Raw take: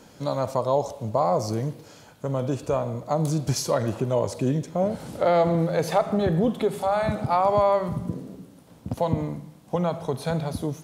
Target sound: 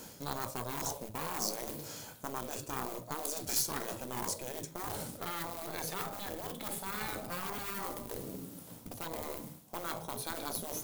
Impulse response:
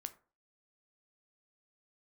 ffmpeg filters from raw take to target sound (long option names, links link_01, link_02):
-filter_complex "[1:a]atrim=start_sample=2205,asetrate=41013,aresample=44100[link_01];[0:a][link_01]afir=irnorm=-1:irlink=0,asplit=2[link_02][link_03];[link_03]acrusher=bits=3:mode=log:mix=0:aa=0.000001,volume=-7dB[link_04];[link_02][link_04]amix=inputs=2:normalize=0,aeval=exprs='0.376*(cos(1*acos(clip(val(0)/0.376,-1,1)))-cos(1*PI/2))+0.0266*(cos(6*acos(clip(val(0)/0.376,-1,1)))-cos(6*PI/2))+0.0188*(cos(7*acos(clip(val(0)/0.376,-1,1)))-cos(7*PI/2))':channel_layout=same,areverse,acompressor=threshold=-31dB:ratio=20,areverse,aemphasis=mode=production:type=50fm,afftfilt=real='re*lt(hypot(re,im),0.0562)':imag='im*lt(hypot(re,im),0.0562)':win_size=1024:overlap=0.75,volume=3.5dB"